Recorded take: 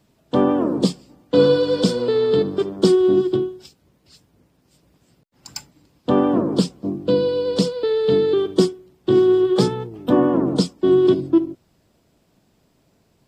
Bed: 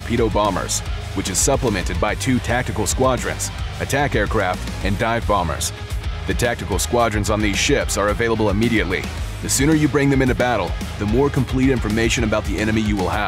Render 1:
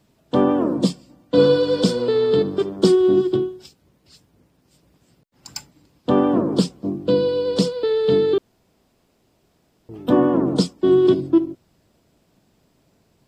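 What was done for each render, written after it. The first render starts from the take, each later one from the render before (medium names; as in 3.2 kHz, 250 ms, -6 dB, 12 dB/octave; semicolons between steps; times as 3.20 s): 0.74–1.38 s: comb of notches 420 Hz; 8.38–9.89 s: room tone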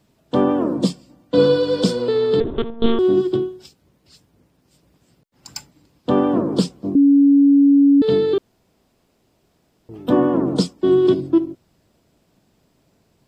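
2.40–2.99 s: monotone LPC vocoder at 8 kHz 230 Hz; 6.95–8.02 s: bleep 281 Hz -8.5 dBFS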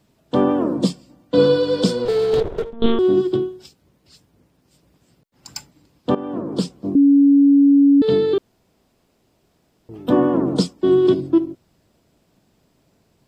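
2.05–2.73 s: comb filter that takes the minimum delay 2.1 ms; 6.15–6.91 s: fade in, from -15.5 dB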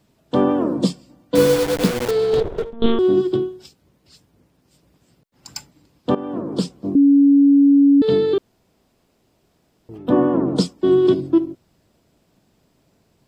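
1.35–2.11 s: send-on-delta sampling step -18.5 dBFS; 9.97–10.56 s: treble shelf 3.3 kHz -> 5.5 kHz -11 dB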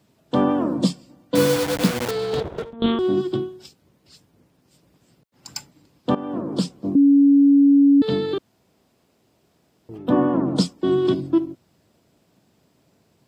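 high-pass 77 Hz; dynamic bell 420 Hz, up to -8 dB, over -32 dBFS, Q 2.7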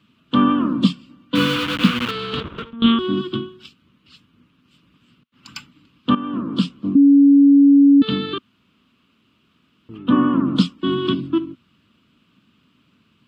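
FFT filter 150 Hz 0 dB, 240 Hz +7 dB, 380 Hz -5 dB, 770 Hz -13 dB, 1.2 kHz +10 dB, 1.9 kHz +1 dB, 2.9 kHz +13 dB, 5.3 kHz -7 dB, 8.7 kHz -11 dB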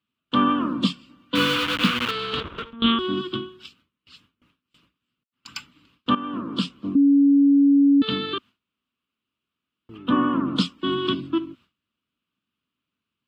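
gate with hold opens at -45 dBFS; peaking EQ 170 Hz -7.5 dB 2.1 oct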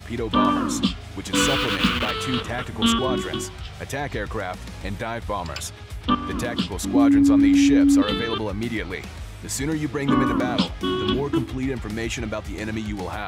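add bed -9.5 dB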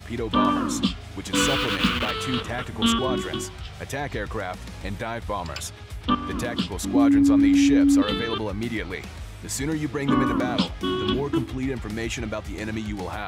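trim -1.5 dB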